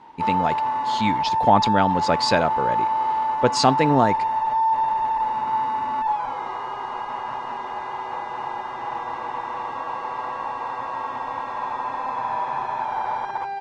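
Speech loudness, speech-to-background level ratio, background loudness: −22.0 LKFS, 3.0 dB, −25.0 LKFS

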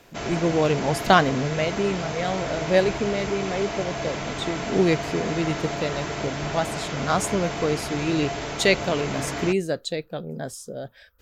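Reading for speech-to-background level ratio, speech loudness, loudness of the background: 5.0 dB, −25.5 LKFS, −30.5 LKFS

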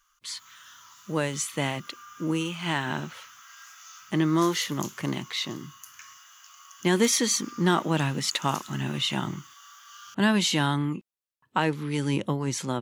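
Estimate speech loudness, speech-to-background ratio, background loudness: −27.0 LKFS, 18.5 dB, −45.5 LKFS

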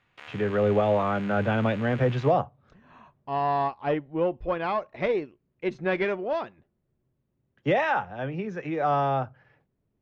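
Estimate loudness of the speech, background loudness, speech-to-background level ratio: −27.0 LKFS, −44.5 LKFS, 17.5 dB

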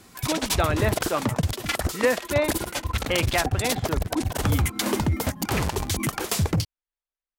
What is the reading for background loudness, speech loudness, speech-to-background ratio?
−26.5 LKFS, −28.0 LKFS, −1.5 dB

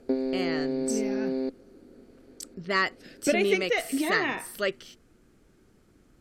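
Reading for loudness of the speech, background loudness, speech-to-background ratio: −28.0 LKFS, −30.0 LKFS, 2.0 dB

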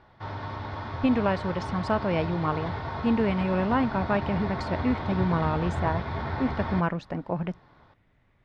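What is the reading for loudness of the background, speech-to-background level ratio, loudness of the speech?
−33.5 LKFS, 5.5 dB, −28.0 LKFS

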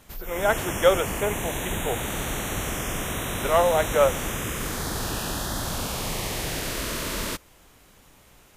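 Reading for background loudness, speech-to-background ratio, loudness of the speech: −29.0 LKFS, 5.0 dB, −24.0 LKFS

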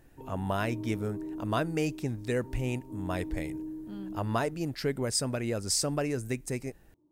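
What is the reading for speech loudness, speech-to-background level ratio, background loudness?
−32.5 LKFS, 9.0 dB, −41.5 LKFS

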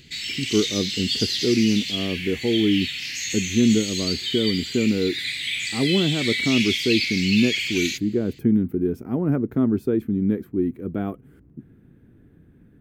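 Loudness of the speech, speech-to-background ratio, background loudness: −23.5 LKFS, 1.5 dB, −25.0 LKFS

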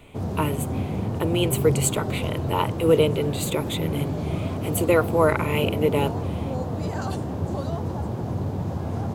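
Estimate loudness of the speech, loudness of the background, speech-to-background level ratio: −24.5 LKFS, −28.0 LKFS, 3.5 dB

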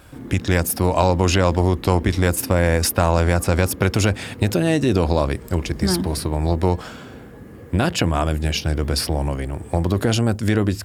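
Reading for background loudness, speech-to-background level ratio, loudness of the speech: −39.5 LKFS, 19.5 dB, −20.0 LKFS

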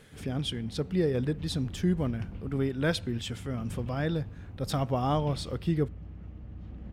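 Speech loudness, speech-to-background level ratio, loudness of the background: −31.0 LKFS, 12.5 dB, −43.5 LKFS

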